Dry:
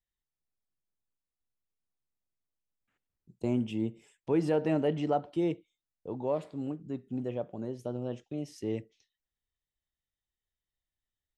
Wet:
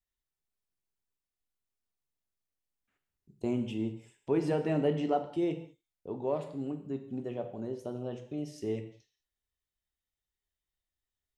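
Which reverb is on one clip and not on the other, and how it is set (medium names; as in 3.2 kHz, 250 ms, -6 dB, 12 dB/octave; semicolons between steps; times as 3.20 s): gated-style reverb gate 230 ms falling, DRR 6 dB; trim -1.5 dB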